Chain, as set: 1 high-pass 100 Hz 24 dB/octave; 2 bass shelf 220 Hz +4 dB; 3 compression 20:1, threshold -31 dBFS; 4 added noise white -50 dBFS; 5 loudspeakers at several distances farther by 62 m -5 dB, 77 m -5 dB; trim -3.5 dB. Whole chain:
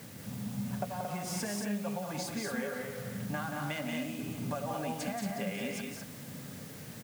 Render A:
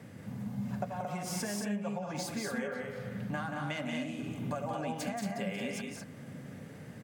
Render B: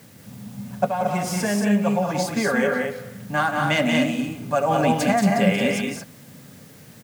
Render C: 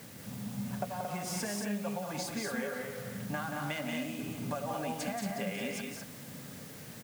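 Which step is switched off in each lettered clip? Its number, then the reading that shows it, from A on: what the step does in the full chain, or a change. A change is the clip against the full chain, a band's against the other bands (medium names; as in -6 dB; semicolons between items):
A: 4, momentary loudness spread change +2 LU; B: 3, mean gain reduction 9.0 dB; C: 2, 125 Hz band -2.0 dB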